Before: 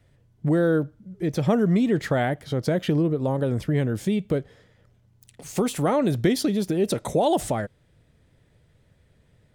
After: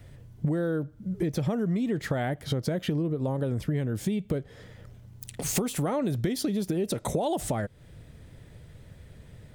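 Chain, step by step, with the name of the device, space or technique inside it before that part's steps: ASMR close-microphone chain (bass shelf 180 Hz +4.5 dB; compression 6:1, threshold -35 dBFS, peak gain reduction 19 dB; treble shelf 11 kHz +6 dB); trim +8.5 dB

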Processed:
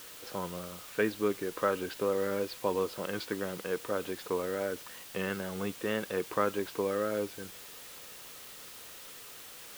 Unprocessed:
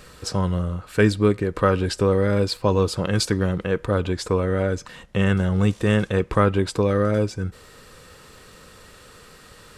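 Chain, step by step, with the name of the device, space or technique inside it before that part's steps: wax cylinder (band-pass 290–2600 Hz; wow and flutter; white noise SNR 14 dB); peaking EQ 3.2 kHz +3.5 dB 0.77 oct; trim -9 dB

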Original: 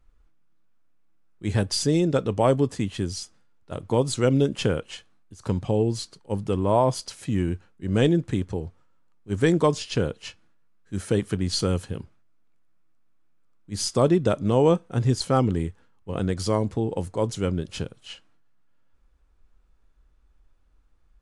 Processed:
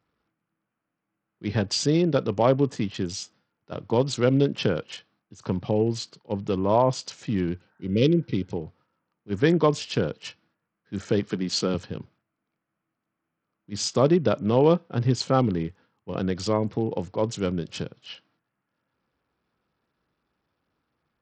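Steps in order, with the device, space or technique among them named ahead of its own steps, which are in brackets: 7.63–8.49 s: spectral replace 580–1900 Hz before; 11.29–11.74 s: high-pass 140 Hz 24 dB/octave; Bluetooth headset (high-pass 110 Hz 24 dB/octave; resampled via 16 kHz; SBC 64 kbps 44.1 kHz)

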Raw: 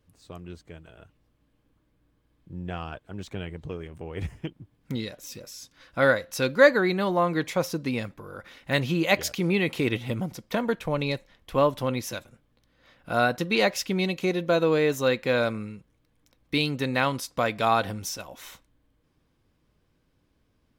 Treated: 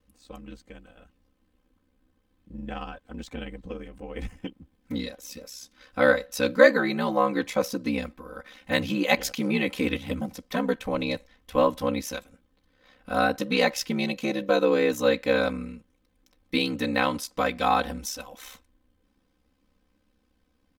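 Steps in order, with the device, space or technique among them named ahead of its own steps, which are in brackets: ring-modulated robot voice (ring modulator 33 Hz; comb 3.9 ms, depth 93%)

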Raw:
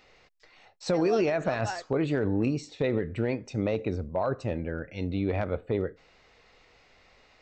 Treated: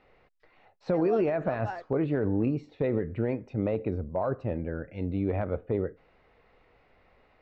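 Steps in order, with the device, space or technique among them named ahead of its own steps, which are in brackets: phone in a pocket (low-pass 3.1 kHz 12 dB/octave; treble shelf 2.3 kHz -12 dB)

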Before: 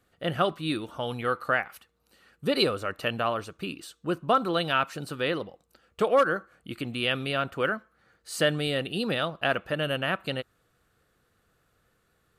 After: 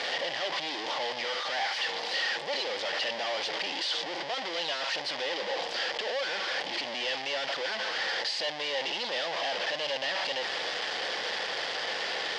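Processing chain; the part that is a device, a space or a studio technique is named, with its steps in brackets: home computer beeper (one-bit comparator; cabinet simulation 540–5200 Hz, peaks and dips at 550 Hz +6 dB, 820 Hz +7 dB, 1.3 kHz -9 dB, 1.9 kHz +7 dB, 3.2 kHz +8 dB, 4.9 kHz +9 dB); trim -3 dB

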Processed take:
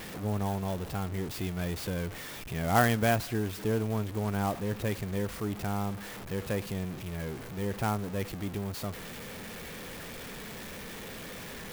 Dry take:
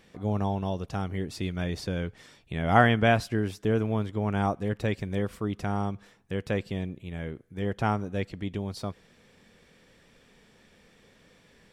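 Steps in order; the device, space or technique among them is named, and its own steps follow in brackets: early CD player with a faulty converter (jump at every zero crossing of -31.5 dBFS; sampling jitter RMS 0.037 ms); trim -5 dB

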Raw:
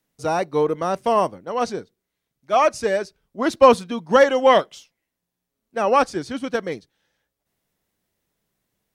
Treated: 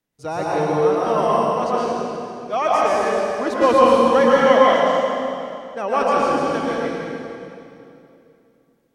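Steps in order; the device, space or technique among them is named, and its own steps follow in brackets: swimming-pool hall (reverberation RT60 2.7 s, pre-delay 108 ms, DRR -6.5 dB; treble shelf 5.9 kHz -4.5 dB); trim -5 dB

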